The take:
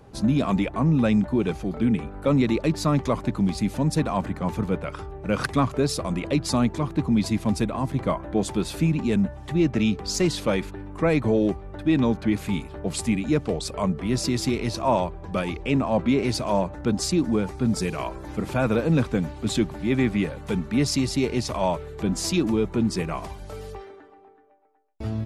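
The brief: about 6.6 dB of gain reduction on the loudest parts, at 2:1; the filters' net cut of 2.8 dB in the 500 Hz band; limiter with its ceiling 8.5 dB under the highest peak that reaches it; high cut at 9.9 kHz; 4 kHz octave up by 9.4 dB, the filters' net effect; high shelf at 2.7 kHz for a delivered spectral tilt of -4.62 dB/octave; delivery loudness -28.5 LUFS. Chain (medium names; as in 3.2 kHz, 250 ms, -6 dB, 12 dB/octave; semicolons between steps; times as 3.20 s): low-pass 9.9 kHz; peaking EQ 500 Hz -4 dB; treble shelf 2.7 kHz +5.5 dB; peaking EQ 4 kHz +7 dB; compression 2:1, threshold -29 dBFS; trim +2.5 dB; peak limiter -17.5 dBFS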